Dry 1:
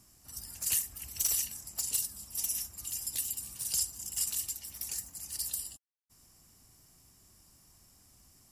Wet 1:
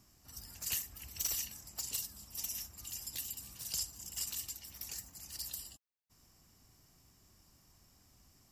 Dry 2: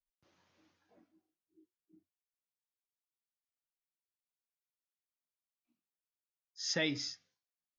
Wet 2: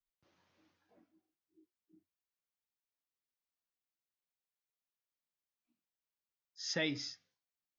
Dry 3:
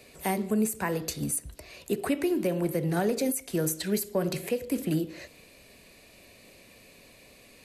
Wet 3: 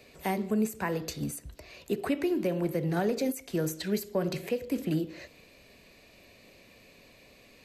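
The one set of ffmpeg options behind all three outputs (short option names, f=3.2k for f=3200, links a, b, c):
-af "equalizer=f=10k:w=1.5:g=-11.5,volume=-1.5dB"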